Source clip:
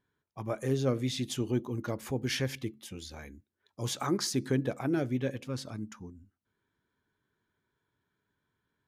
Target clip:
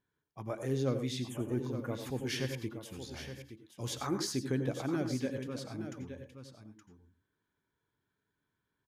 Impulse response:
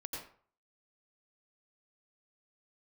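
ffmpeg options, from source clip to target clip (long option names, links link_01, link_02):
-filter_complex "[0:a]asettb=1/sr,asplit=3[link_01][link_02][link_03];[link_01]atrim=end=1.204[link_04];[link_02]atrim=start=1.2:end=2.06,asetpts=PTS-STARTPTS,afade=type=in:duration=0.004:curve=qsin,afade=type=out:start_time=0.856:duration=0.004:curve=qsin,asuperstop=centerf=4600:order=4:qfactor=0.74[link_05];[link_03]atrim=start=2.056[link_06];[link_04][link_05]acrossfade=duration=0.004:curve1=hsin:curve2=qsin[link_07];[link_07][link_06]acrossfade=duration=0.004:curve1=qsin:curve2=hsin,aecho=1:1:870:0.316,asplit=2[link_08][link_09];[1:a]atrim=start_sample=2205,afade=type=out:start_time=0.17:duration=0.01,atrim=end_sample=7938[link_10];[link_09][link_10]afir=irnorm=-1:irlink=0,volume=-1dB[link_11];[link_08][link_11]amix=inputs=2:normalize=0,volume=-8dB"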